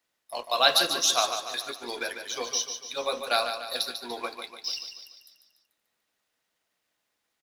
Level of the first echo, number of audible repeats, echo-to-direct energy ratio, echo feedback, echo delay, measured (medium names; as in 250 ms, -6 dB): -8.0 dB, 5, -7.0 dB, 50%, 146 ms